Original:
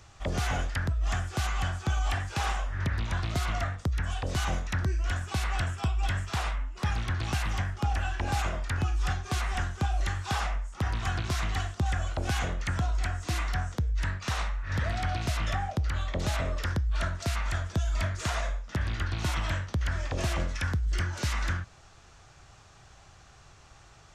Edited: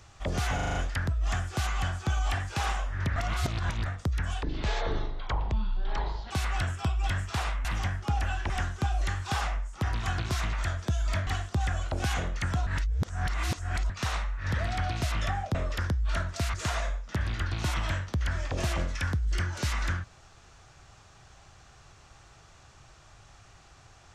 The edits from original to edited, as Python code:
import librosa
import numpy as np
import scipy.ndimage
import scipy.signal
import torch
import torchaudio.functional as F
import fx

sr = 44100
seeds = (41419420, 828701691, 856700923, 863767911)

y = fx.edit(x, sr, fx.stutter(start_s=0.55, slice_s=0.04, count=6),
    fx.reverse_span(start_s=2.96, length_s=0.7),
    fx.speed_span(start_s=4.23, length_s=1.07, speed=0.57),
    fx.cut(start_s=6.64, length_s=0.75),
    fx.cut(start_s=8.24, length_s=1.25),
    fx.reverse_span(start_s=12.92, length_s=1.23),
    fx.cut(start_s=15.8, length_s=0.61),
    fx.move(start_s=17.4, length_s=0.74, to_s=11.52), tone=tone)